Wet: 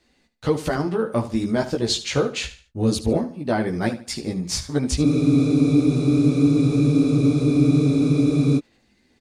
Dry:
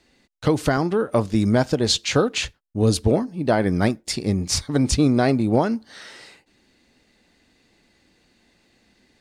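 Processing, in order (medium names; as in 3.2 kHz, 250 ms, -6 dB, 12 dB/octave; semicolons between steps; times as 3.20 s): chorus voices 4, 1.3 Hz, delay 15 ms, depth 3 ms; feedback delay 74 ms, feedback 32%, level -13.5 dB; spectral freeze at 5.07 s, 3.51 s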